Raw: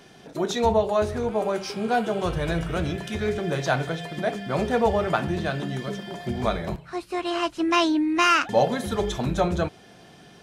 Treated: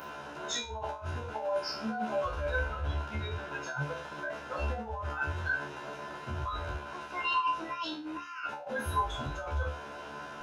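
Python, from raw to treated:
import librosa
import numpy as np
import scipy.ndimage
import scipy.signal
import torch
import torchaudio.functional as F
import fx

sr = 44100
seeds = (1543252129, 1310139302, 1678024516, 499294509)

y = fx.bin_compress(x, sr, power=0.2)
y = fx.noise_reduce_blind(y, sr, reduce_db=27)
y = fx.bass_treble(y, sr, bass_db=1, treble_db=-4, at=(2.61, 3.62))
y = fx.over_compress(y, sr, threshold_db=-30.0, ratio=-1.0)
y = fx.comb_fb(y, sr, f0_hz=73.0, decay_s=0.33, harmonics='all', damping=0.0, mix_pct=100)
y = fx.small_body(y, sr, hz=(1000.0, 1500.0), ring_ms=35, db=13)
y = y * librosa.db_to_amplitude(2.0)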